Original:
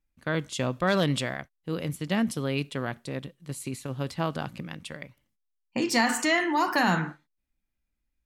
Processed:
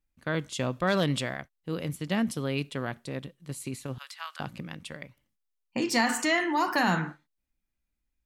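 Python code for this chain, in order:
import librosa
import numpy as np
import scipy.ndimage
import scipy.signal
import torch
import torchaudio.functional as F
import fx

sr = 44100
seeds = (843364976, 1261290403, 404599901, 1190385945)

y = fx.highpass(x, sr, hz=1200.0, slope=24, at=(3.98, 4.4))
y = y * librosa.db_to_amplitude(-1.5)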